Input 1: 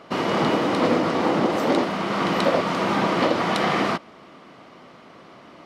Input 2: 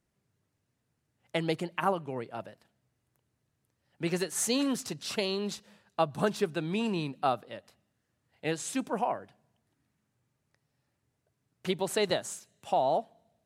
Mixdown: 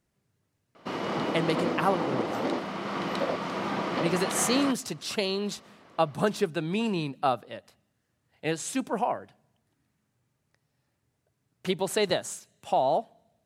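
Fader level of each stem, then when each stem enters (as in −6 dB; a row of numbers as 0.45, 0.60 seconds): −9.0, +2.5 decibels; 0.75, 0.00 seconds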